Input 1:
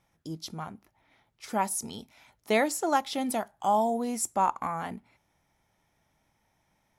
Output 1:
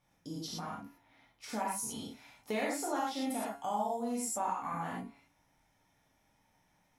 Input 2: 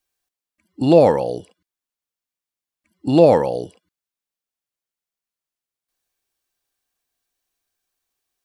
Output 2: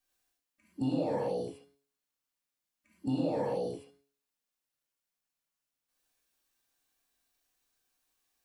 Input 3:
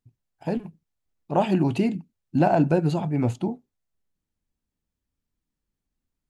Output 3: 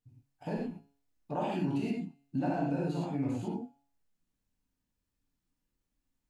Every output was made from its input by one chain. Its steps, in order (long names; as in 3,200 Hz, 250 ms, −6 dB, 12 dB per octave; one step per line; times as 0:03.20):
brickwall limiter −12 dBFS
tuned comb filter 140 Hz, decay 0.49 s, harmonics all, mix 50%
reverb whose tail is shaped and stops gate 140 ms flat, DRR −6 dB
downward compressor 2 to 1, threshold −36 dBFS
level −1.5 dB